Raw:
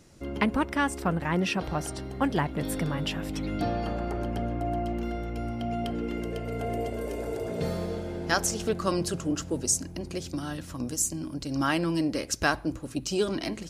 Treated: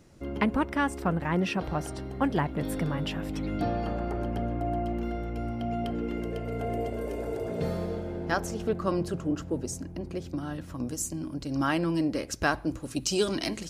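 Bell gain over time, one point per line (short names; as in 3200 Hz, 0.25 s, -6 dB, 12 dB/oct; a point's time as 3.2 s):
bell 7800 Hz 2.8 oct
7.81 s -6 dB
8.4 s -13.5 dB
10.39 s -13.5 dB
11 s -6 dB
12.49 s -6 dB
12.98 s +5 dB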